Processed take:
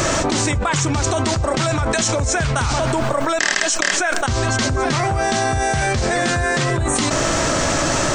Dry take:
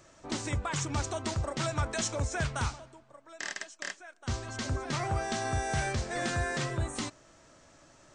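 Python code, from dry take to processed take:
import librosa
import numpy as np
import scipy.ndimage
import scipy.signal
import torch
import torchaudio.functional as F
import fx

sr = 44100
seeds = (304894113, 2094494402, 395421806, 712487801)

y = fx.env_flatten(x, sr, amount_pct=100)
y = y * 10.0 ** (7.5 / 20.0)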